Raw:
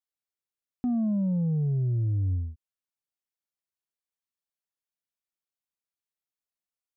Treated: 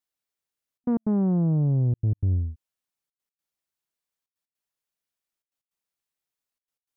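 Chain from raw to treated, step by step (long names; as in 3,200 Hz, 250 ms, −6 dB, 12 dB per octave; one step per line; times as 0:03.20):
gate pattern "xxxxxxxx.x.x" 155 BPM −60 dB
highs frequency-modulated by the lows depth 0.54 ms
level +4.5 dB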